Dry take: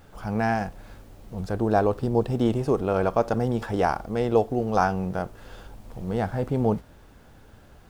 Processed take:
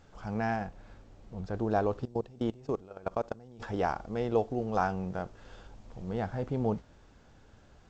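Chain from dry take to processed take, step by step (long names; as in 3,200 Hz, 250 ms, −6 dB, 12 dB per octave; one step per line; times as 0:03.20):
0:00.56–0:01.54: high-shelf EQ 5,300 Hz −10.5 dB
0:02.05–0:03.60: output level in coarse steps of 22 dB
level −7 dB
G.722 64 kbit/s 16,000 Hz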